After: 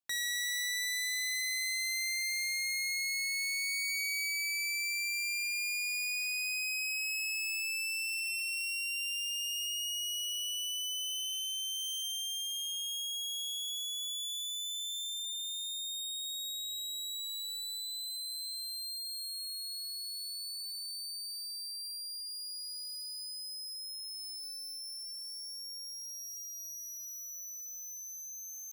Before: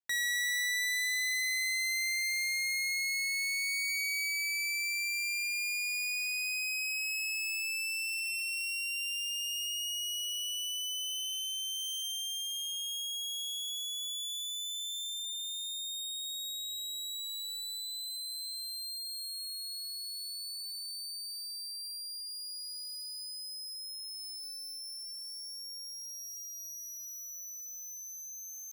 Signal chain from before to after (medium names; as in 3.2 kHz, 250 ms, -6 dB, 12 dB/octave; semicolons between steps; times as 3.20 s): peaking EQ 1.9 kHz -5 dB 0.34 oct